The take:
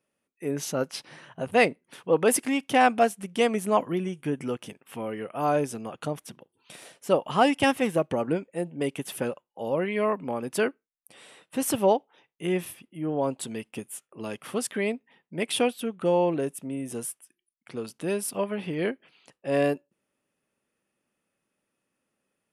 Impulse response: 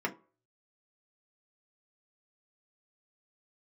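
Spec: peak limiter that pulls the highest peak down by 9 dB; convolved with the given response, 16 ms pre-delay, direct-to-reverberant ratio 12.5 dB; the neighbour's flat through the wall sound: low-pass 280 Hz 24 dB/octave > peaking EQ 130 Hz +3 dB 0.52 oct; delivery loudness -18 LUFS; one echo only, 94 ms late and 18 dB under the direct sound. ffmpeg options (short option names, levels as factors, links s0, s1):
-filter_complex "[0:a]alimiter=limit=0.158:level=0:latency=1,aecho=1:1:94:0.126,asplit=2[s0][s1];[1:a]atrim=start_sample=2205,adelay=16[s2];[s1][s2]afir=irnorm=-1:irlink=0,volume=0.112[s3];[s0][s3]amix=inputs=2:normalize=0,lowpass=f=280:w=0.5412,lowpass=f=280:w=1.3066,equalizer=f=130:t=o:w=0.52:g=3,volume=7.94"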